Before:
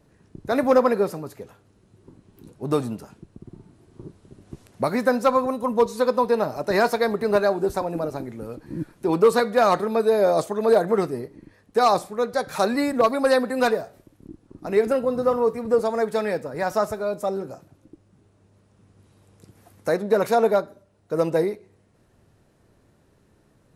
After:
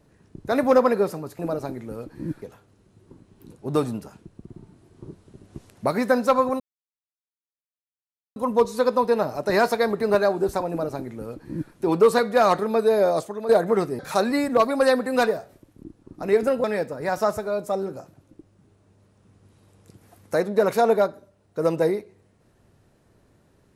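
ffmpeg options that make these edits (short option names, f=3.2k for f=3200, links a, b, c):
-filter_complex "[0:a]asplit=7[a][b][c][d][e][f][g];[a]atrim=end=1.392[h];[b]atrim=start=7.898:end=8.932[i];[c]atrim=start=1.388:end=5.57,asetpts=PTS-STARTPTS,afade=t=out:st=4.178:d=0.004:c=hsin,apad=pad_dur=1.76[j];[d]atrim=start=5.57:end=10.7,asetpts=PTS-STARTPTS,afade=t=in:d=0.004:c=hsin,afade=t=out:st=4.62:d=0.51:silence=0.298538[k];[e]atrim=start=10.7:end=11.202,asetpts=PTS-STARTPTS,afade=t=in:d=0.004:c=hsin:silence=0.298538[l];[f]atrim=start=12.428:end=15.082[m];[g]atrim=start=16.178[n];[h][i]acrossfade=d=0.004:c1=hsin:c2=hsin[o];[j][k][l]concat=n=3:v=0:a=1[p];[o][p]acrossfade=d=0.004:c1=hsin:c2=hsin[q];[q][m]acrossfade=d=0.004:c1=hsin:c2=hsin[r];[r][n]acrossfade=d=0.004:c1=hsin:c2=hsin"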